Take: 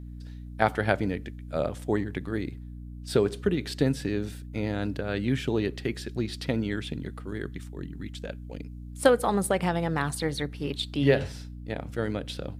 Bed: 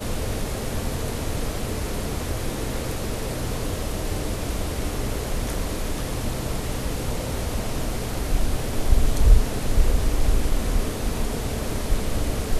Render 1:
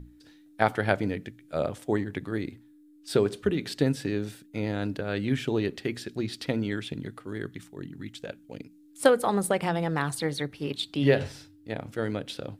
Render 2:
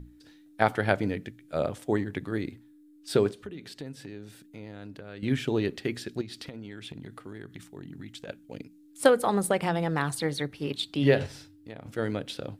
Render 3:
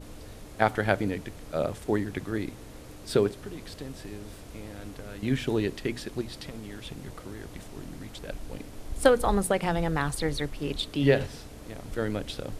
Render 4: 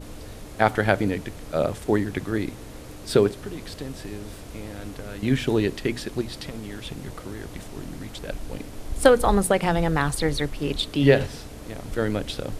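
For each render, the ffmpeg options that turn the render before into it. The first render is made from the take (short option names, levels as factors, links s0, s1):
-af "bandreject=f=60:t=h:w=6,bandreject=f=120:t=h:w=6,bandreject=f=180:t=h:w=6,bandreject=f=240:t=h:w=6"
-filter_complex "[0:a]asettb=1/sr,asplit=3[s0][s1][s2];[s0]atrim=end=3.314[s3];[s1]atrim=start=3.31:end=5.23,asetpts=PTS-STARTPTS,afade=t=in:d=0.004:c=qsin,afade=t=out:st=1.916:d=0.004:c=qsin,acompressor=threshold=0.00398:ratio=2:attack=3.2:release=140:knee=1:detection=peak[s4];[s2]atrim=start=5.226[s5];[s3][s4]acrossfade=d=0.004:c1=hsin:c2=qsin[s6];[s6][s5]acrossfade=d=0.004:c1=qsin:c2=hsin,asettb=1/sr,asplit=3[s7][s8][s9];[s7]atrim=end=6.214[s10];[s8]atrim=start=6.21:end=8.28,asetpts=PTS-STARTPTS,afade=t=in:d=0.004:c=qsin,afade=t=out:st=2.066:d=0.004:c=qsin,acompressor=threshold=0.0158:ratio=12:attack=3.2:release=140:knee=1:detection=peak[s11];[s9]atrim=start=8.276[s12];[s10][s11]acrossfade=d=0.004:c1=hsin:c2=qsin[s13];[s13][s12]acrossfade=d=0.004:c1=qsin:c2=hsin,asettb=1/sr,asplit=3[s14][s15][s16];[s14]atrim=end=11.264[s17];[s15]atrim=start=11.26:end=11.86,asetpts=PTS-STARTPTS,afade=t=in:d=0.004:c=qsin,afade=t=out:st=0.596:d=0.004:c=qsin,acompressor=threshold=0.0112:ratio=3:attack=3.2:release=140:knee=1:detection=peak[s18];[s16]atrim=start=11.856[s19];[s17][s18]acrossfade=d=0.004:c1=hsin:c2=qsin[s20];[s20][s19]acrossfade=d=0.004:c1=qsin:c2=hsin"
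-filter_complex "[1:a]volume=0.126[s0];[0:a][s0]amix=inputs=2:normalize=0"
-af "volume=1.78,alimiter=limit=0.794:level=0:latency=1"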